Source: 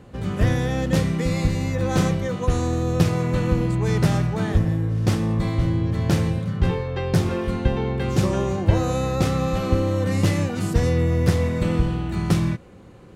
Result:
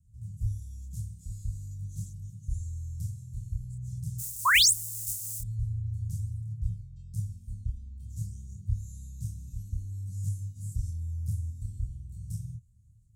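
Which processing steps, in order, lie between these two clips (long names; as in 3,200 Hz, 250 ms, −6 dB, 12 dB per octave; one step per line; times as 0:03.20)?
0:04.18–0:05.39: compressing power law on the bin magnitudes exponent 0.13
elliptic band-stop filter 110–7,400 Hz, stop band 80 dB
0:04.45–0:04.71: sound drawn into the spectrogram rise 930–10,000 Hz −9 dBFS
multi-voice chorus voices 2, 0.23 Hz, delay 27 ms, depth 1 ms
level −7.5 dB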